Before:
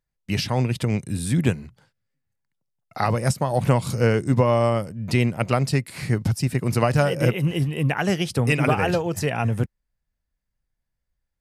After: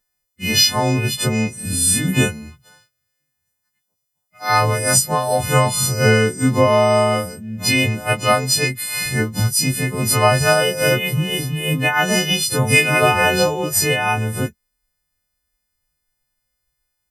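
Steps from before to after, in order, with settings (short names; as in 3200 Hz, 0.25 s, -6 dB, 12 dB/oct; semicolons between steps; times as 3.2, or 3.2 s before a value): frequency quantiser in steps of 3 st; plain phase-vocoder stretch 1.5×; gain +5.5 dB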